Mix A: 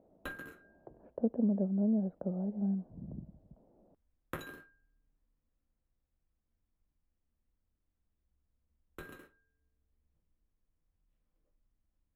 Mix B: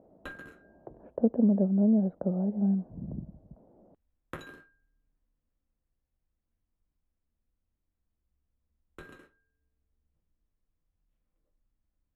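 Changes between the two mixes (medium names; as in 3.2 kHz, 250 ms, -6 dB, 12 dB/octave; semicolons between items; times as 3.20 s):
speech +6.5 dB; background: add low-pass 8.8 kHz 12 dB/octave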